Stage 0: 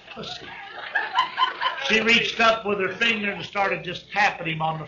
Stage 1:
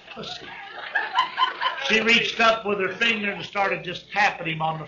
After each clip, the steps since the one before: bell 90 Hz -7 dB 0.69 oct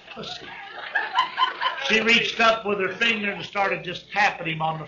nothing audible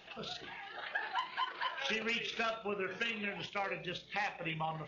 compressor 6:1, threshold -24 dBFS, peak gain reduction 10 dB; gain -9 dB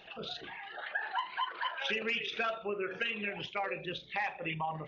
formant sharpening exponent 1.5; gain +2 dB

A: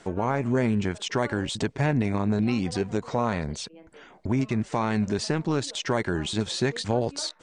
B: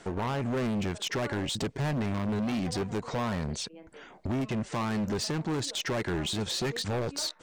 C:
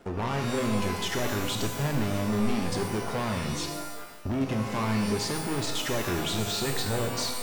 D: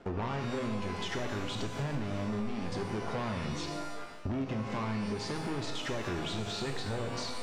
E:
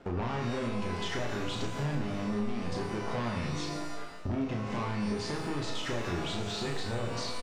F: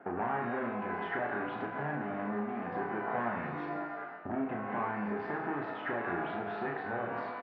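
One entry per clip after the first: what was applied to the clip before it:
overloaded stage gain 27 dB
backlash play -46 dBFS; shimmer reverb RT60 1 s, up +12 st, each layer -2 dB, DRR 4 dB
compressor, threshold -31 dBFS, peak gain reduction 10 dB; air absorption 89 m
doubler 34 ms -4.5 dB
speaker cabinet 240–2000 Hz, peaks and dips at 510 Hz -4 dB, 750 Hz +8 dB, 1600 Hz +7 dB

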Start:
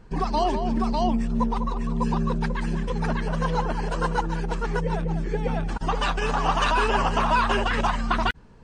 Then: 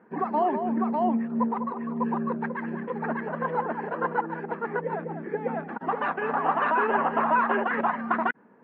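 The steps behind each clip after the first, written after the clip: elliptic band-pass 220–1900 Hz, stop band 80 dB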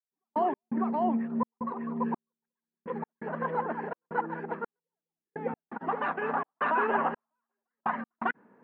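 step gate "..x.xxxx.xxx.." 84 bpm -60 dB; gain -3 dB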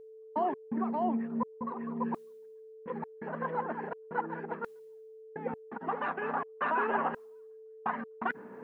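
reverse; upward compressor, threshold -33 dBFS; reverse; whine 440 Hz -45 dBFS; gain -3 dB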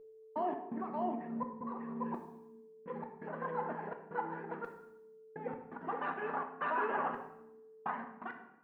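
ending faded out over 0.73 s; on a send at -4.5 dB: reverb RT60 0.80 s, pre-delay 5 ms; on the sum: gain -5.5 dB

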